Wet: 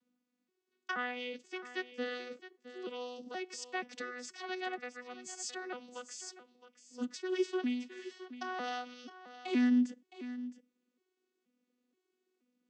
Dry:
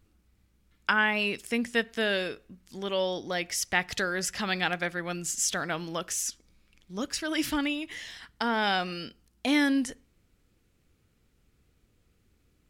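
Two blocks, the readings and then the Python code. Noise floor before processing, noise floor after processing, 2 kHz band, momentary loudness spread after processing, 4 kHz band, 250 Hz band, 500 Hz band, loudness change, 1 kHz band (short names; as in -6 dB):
-69 dBFS, -85 dBFS, -13.0 dB, 14 LU, -13.5 dB, -4.5 dB, -7.5 dB, -9.0 dB, -10.0 dB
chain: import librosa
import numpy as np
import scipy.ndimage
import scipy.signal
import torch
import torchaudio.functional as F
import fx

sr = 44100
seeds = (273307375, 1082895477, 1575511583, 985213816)

y = fx.vocoder_arp(x, sr, chord='bare fifth', root=59, every_ms=477)
y = fx.high_shelf(y, sr, hz=2800.0, db=8.5)
y = y + 10.0 ** (-14.0 / 20.0) * np.pad(y, (int(665 * sr / 1000.0), 0))[:len(y)]
y = y * 10.0 ** (-7.5 / 20.0)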